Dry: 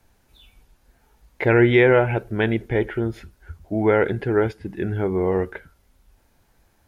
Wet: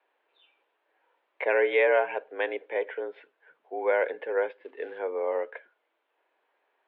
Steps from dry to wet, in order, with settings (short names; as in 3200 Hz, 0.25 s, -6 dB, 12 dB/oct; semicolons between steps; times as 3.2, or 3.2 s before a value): 4.53–4.99 companded quantiser 6-bit; mistuned SSB +74 Hz 340–3200 Hz; gain -6 dB